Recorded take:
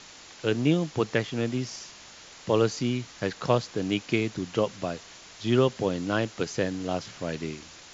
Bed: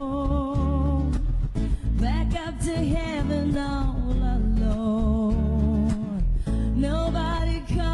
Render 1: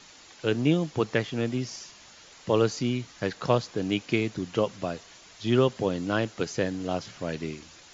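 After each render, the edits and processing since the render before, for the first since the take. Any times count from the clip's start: noise reduction 6 dB, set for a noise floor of -49 dBFS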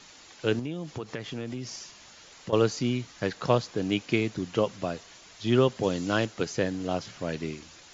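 0.59–2.53 s: compression 5:1, threshold -31 dBFS; 5.83–6.26 s: treble shelf 4.6 kHz +10 dB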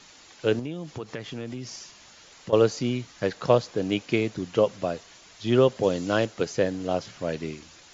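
dynamic bell 540 Hz, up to +6 dB, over -37 dBFS, Q 1.7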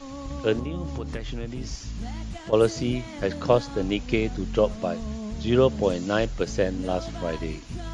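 add bed -10.5 dB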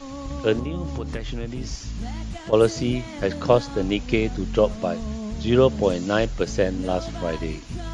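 trim +2.5 dB

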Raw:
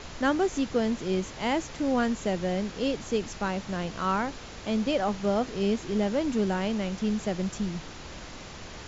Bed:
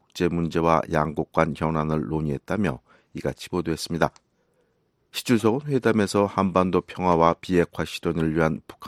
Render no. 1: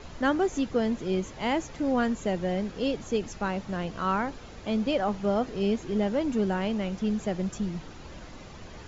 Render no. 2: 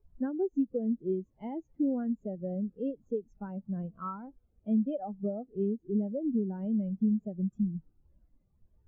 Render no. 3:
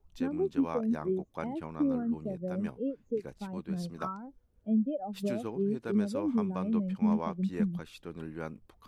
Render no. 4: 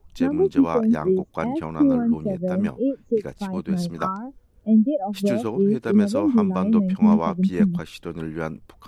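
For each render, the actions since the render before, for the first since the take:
noise reduction 8 dB, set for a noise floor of -43 dBFS
compression 12:1, threshold -28 dBFS, peak gain reduction 9 dB; spectral contrast expander 2.5:1
add bed -18 dB
trim +11 dB

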